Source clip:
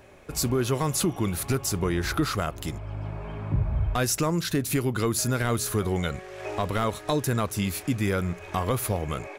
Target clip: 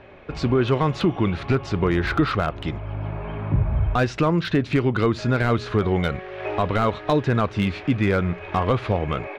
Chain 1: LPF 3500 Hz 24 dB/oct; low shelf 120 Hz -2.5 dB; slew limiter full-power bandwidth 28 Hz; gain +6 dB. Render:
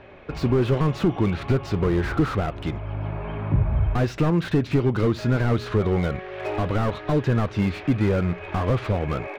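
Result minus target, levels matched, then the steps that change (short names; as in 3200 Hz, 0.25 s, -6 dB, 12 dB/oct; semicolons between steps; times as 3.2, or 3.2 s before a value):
slew limiter: distortion +16 dB
change: slew limiter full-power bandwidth 110 Hz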